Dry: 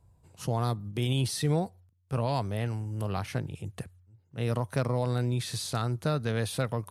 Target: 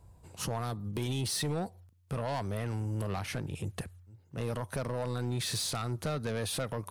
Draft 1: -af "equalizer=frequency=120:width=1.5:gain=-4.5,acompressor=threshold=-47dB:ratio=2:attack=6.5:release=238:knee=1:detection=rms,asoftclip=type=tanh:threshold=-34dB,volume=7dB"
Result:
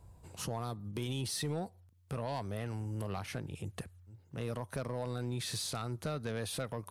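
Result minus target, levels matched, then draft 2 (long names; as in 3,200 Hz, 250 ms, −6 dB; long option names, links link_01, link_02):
downward compressor: peak gain reduction +6 dB
-af "equalizer=frequency=120:width=1.5:gain=-4.5,acompressor=threshold=-35.5dB:ratio=2:attack=6.5:release=238:knee=1:detection=rms,asoftclip=type=tanh:threshold=-34dB,volume=7dB"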